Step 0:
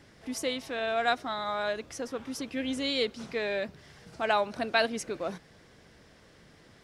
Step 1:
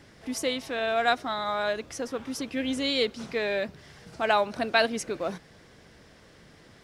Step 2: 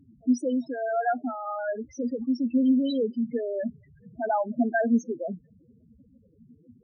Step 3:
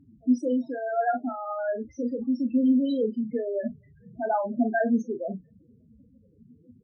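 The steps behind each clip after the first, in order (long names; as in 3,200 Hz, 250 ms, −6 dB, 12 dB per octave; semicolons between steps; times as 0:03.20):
floating-point word with a short mantissa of 6 bits; level +3 dB
spectral peaks only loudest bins 4; parametric band 240 Hz +14.5 dB 0.33 octaves; on a send at −24 dB: convolution reverb, pre-delay 3 ms
high-shelf EQ 3,800 Hz −12 dB; on a send: ambience of single reflections 32 ms −9 dB, 42 ms −12 dB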